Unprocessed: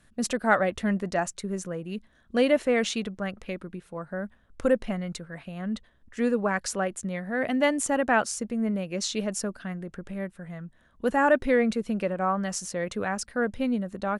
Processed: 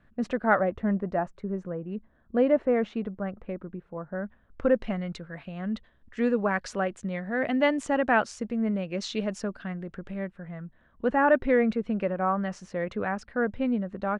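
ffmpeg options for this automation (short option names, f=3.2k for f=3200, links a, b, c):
-af "asetnsamples=n=441:p=0,asendcmd='0.59 lowpass f 1200;4.15 lowpass f 2200;4.76 lowpass f 3800;10.3 lowpass f 2400',lowpass=1.9k"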